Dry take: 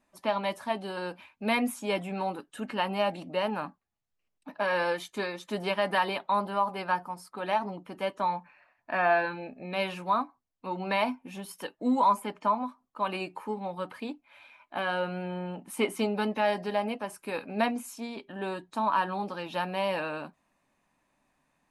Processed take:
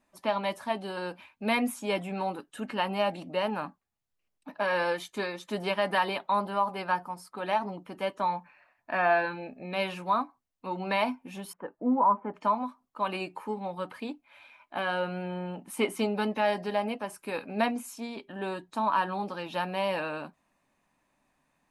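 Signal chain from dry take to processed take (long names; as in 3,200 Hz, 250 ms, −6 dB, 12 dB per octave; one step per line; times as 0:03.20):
0:11.53–0:12.34: low-pass filter 1,500 Hz 24 dB per octave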